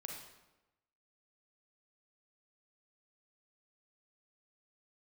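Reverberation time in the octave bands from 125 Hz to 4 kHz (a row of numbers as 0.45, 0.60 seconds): 1.1, 1.1, 1.1, 1.0, 0.90, 0.75 seconds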